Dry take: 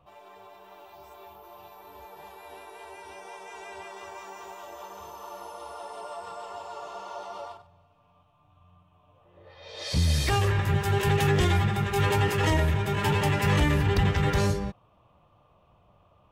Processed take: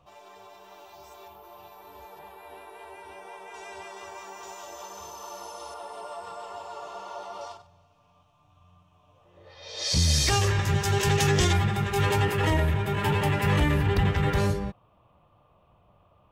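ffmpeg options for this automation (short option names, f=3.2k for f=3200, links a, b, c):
-af "asetnsamples=n=441:p=0,asendcmd='1.28 equalizer g 2;2.19 equalizer g -7.5;3.54 equalizer g 3.5;4.43 equalizer g 10.5;5.74 equalizer g 0.5;7.41 equalizer g 11.5;11.53 equalizer g 2;12.25 equalizer g -5',equalizer=f=6k:t=o:w=1.1:g=9.5"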